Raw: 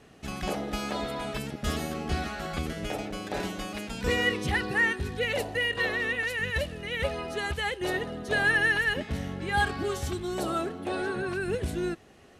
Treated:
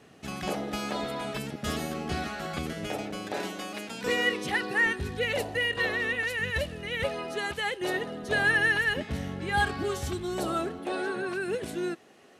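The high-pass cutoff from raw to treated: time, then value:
97 Hz
from 3.32 s 230 Hz
from 4.86 s 60 Hz
from 7.04 s 160 Hz
from 8.24 s 59 Hz
from 10.79 s 220 Hz

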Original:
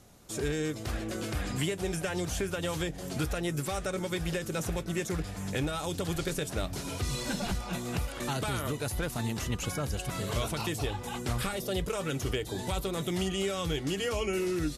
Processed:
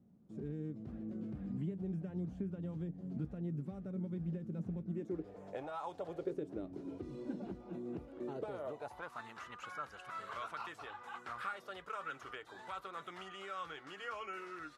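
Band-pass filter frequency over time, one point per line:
band-pass filter, Q 3.2
4.86 s 200 Hz
5.81 s 1 kHz
6.42 s 320 Hz
8.16 s 320 Hz
9.22 s 1.3 kHz

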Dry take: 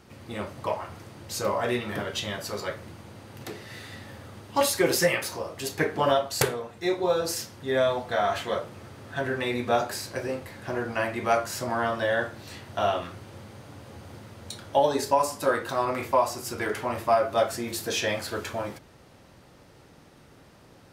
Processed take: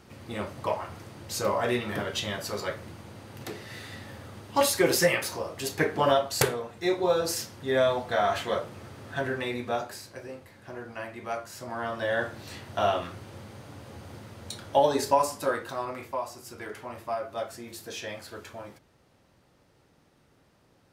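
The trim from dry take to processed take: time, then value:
9.13 s 0 dB
10.16 s -10 dB
11.53 s -10 dB
12.31 s 0 dB
15.15 s 0 dB
16.14 s -10 dB

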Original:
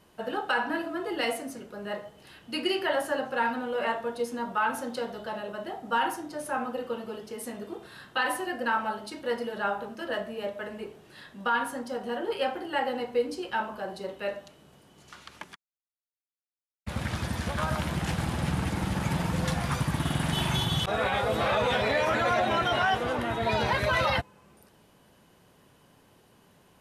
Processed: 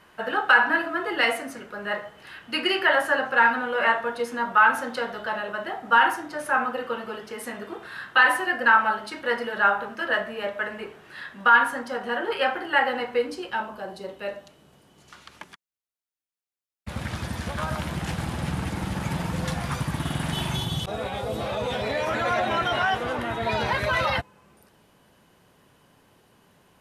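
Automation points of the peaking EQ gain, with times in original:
peaking EQ 1.6 kHz 1.8 oct
13.18 s +12.5 dB
13.63 s +0.5 dB
20.32 s +0.5 dB
20.99 s -9 dB
21.53 s -9 dB
22.36 s +2.5 dB

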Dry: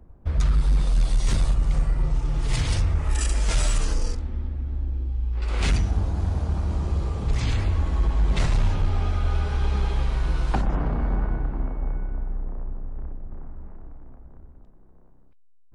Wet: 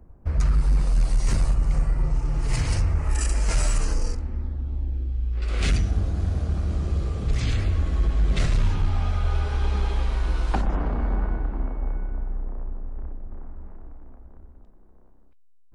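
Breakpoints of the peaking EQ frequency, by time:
peaking EQ -12 dB 0.33 oct
4.37 s 3.5 kHz
5.04 s 910 Hz
8.51 s 910 Hz
9.64 s 140 Hz

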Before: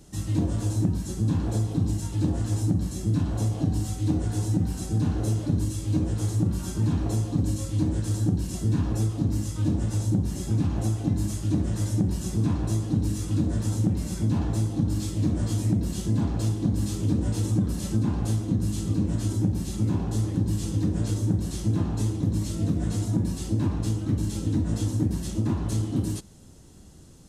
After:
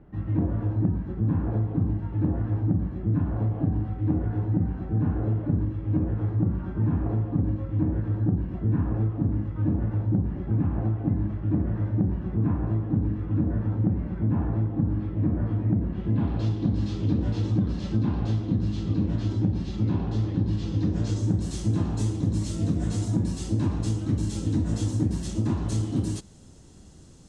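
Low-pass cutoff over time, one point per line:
low-pass 24 dB/octave
15.91 s 1.9 kHz
16.46 s 4.4 kHz
20.66 s 4.4 kHz
21.48 s 9.1 kHz

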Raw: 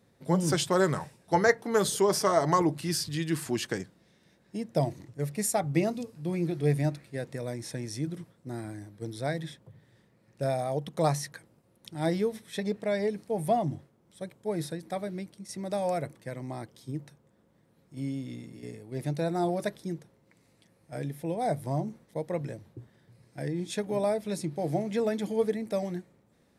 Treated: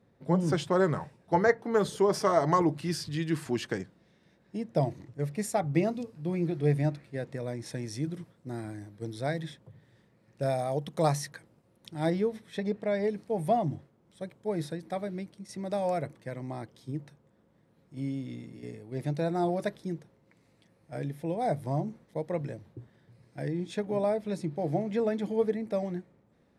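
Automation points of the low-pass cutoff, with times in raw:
low-pass 6 dB/octave
1.7 kHz
from 2.14 s 3.1 kHz
from 7.66 s 6.4 kHz
from 10.46 s 12 kHz
from 11.30 s 5.8 kHz
from 12.10 s 2.4 kHz
from 13.04 s 4.2 kHz
from 23.57 s 2.3 kHz

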